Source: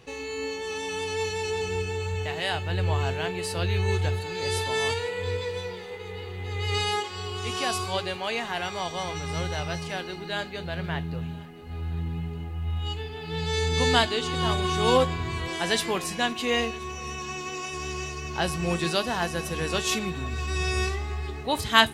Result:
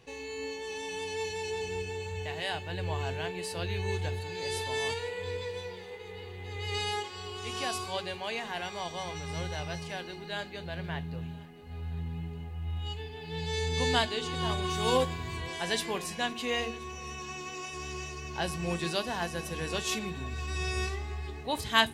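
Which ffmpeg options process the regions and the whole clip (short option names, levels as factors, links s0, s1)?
-filter_complex "[0:a]asettb=1/sr,asplit=3[s0][s1][s2];[s0]atrim=end=14.704[s3];[s1]atrim=start=14.7:end=15.37,asetpts=PTS-STARTPTS,afade=t=in:d=0.004:c=qsin,afade=t=out:st=0.666:d=0.004:c=qsin,highshelf=f=6900:g=7,aeval=exprs='sgn(val(0))*max(abs(val(0))-0.00376,0)':c=same[s4];[s2]atrim=start=15.366[s5];[s3][s4]acrossfade=d=0.004:c1=hsin:c2=qsin[s6];[s6][s5]acrossfade=d=0.004:c1=qsin:c2=hsin,bandreject=f=1300:w=9.3,bandreject=f=47.01:t=h:w=4,bandreject=f=94.02:t=h:w=4,bandreject=f=141.03:t=h:w=4,bandreject=f=188.04:t=h:w=4,bandreject=f=235.05:t=h:w=4,bandreject=f=282.06:t=h:w=4,bandreject=f=329.07:t=h:w=4,bandreject=f=376.08:t=h:w=4,bandreject=f=423.09:t=h:w=4,bandreject=f=470.1:t=h:w=4,volume=0.531"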